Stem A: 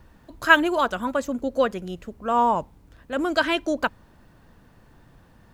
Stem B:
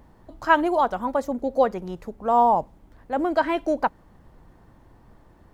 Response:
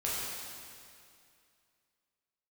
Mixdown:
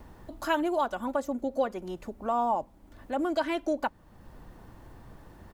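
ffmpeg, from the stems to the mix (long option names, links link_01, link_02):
-filter_complex "[0:a]highshelf=frequency=6300:gain=7,volume=-4dB[link_01];[1:a]adelay=3.6,volume=2.5dB[link_02];[link_01][link_02]amix=inputs=2:normalize=0,acompressor=threshold=-44dB:ratio=1.5"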